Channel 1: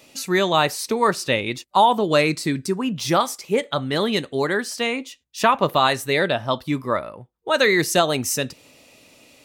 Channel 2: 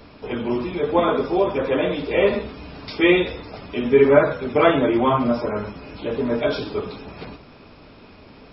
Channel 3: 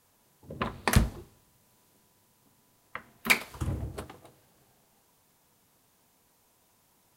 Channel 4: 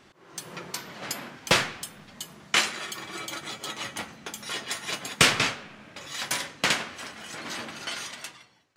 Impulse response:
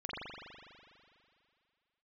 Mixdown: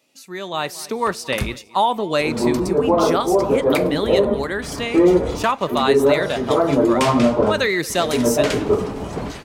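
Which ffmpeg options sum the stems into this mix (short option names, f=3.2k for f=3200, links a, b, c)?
-filter_complex "[0:a]highpass=140,volume=-13.5dB,asplit=3[a][b][c];[b]volume=-22dB[d];[1:a]lowpass=f=1.2k:w=0.5412,lowpass=f=1.2k:w=1.3066,adelay=1950,volume=-1.5dB[e];[2:a]adelay=450,volume=-14dB[f];[3:a]adelay=1800,volume=-14dB,asplit=3[g][h][i];[g]atrim=end=2.6,asetpts=PTS-STARTPTS,afade=t=out:st=2.596:d=0.004:c=hsin[j];[h]atrim=start=2.6:end=4.62,asetpts=PTS-STARTPTS,volume=0[k];[i]atrim=start=4.62,asetpts=PTS-STARTPTS,afade=t=in:d=0.004:c=hsin[l];[j][k][l]concat=n=3:v=0:a=1,asplit=2[m][n];[n]volume=-20dB[o];[c]apad=whole_len=462138[p];[e][p]sidechaincompress=threshold=-36dB:ratio=8:attack=16:release=448[q];[q][f][m]amix=inputs=3:normalize=0,agate=range=-14dB:threshold=-44dB:ratio=16:detection=peak,alimiter=limit=-17.5dB:level=0:latency=1:release=201,volume=0dB[r];[d][o]amix=inputs=2:normalize=0,aecho=0:1:229|458|687|916|1145|1374|1603|1832:1|0.54|0.292|0.157|0.085|0.0459|0.0248|0.0134[s];[a][r][s]amix=inputs=3:normalize=0,dynaudnorm=f=390:g=3:m=11.5dB"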